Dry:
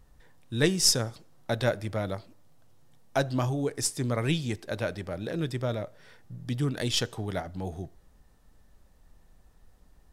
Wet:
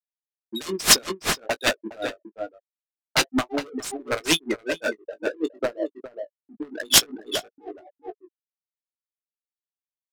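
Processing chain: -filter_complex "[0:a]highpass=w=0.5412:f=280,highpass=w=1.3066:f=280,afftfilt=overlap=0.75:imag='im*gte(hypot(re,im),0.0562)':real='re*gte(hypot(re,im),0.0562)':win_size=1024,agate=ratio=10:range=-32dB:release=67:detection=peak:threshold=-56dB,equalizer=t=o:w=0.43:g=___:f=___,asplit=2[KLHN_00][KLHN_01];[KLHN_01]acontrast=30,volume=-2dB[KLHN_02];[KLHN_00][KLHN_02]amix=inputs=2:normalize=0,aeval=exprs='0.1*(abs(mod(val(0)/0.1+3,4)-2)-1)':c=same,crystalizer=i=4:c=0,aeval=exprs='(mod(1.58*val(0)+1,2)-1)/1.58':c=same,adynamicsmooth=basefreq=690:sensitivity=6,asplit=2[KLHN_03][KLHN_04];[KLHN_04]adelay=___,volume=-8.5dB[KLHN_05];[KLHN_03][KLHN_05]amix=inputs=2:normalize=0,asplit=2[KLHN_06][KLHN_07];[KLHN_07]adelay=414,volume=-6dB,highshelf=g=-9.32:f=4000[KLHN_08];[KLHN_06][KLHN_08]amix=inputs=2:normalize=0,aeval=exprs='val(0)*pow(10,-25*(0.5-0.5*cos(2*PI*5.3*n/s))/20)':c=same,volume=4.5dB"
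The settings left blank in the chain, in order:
-4, 540, 19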